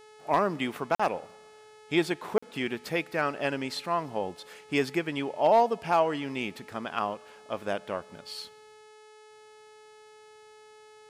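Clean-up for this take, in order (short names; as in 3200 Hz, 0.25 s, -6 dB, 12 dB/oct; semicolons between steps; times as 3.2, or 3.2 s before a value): clip repair -13.5 dBFS; de-hum 428.9 Hz, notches 25; interpolate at 0.95/2.38, 45 ms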